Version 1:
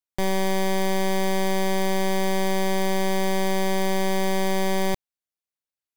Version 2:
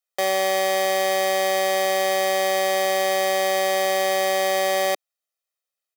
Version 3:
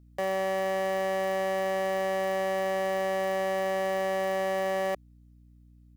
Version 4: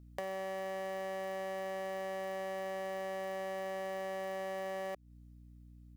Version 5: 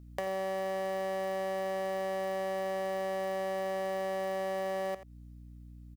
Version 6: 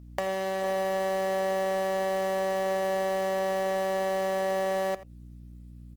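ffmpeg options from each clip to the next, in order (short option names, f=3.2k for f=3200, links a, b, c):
-af "highpass=f=350:w=0.5412,highpass=f=350:w=1.3066,aecho=1:1:1.6:0.87,volume=3dB"
-af "aeval=exprs='val(0)+0.002*(sin(2*PI*60*n/s)+sin(2*PI*2*60*n/s)/2+sin(2*PI*3*60*n/s)/3+sin(2*PI*4*60*n/s)/4+sin(2*PI*5*60*n/s)/5)':c=same,asoftclip=type=tanh:threshold=-25dB"
-af "acompressor=threshold=-38dB:ratio=10"
-af "aecho=1:1:84:0.2,volume=4.5dB"
-filter_complex "[0:a]asplit=2[a][b];[b]acrusher=bits=5:mix=0:aa=0.000001,volume=-11dB[c];[a][c]amix=inputs=2:normalize=0,volume=4dB" -ar 48000 -c:a libopus -b:a 16k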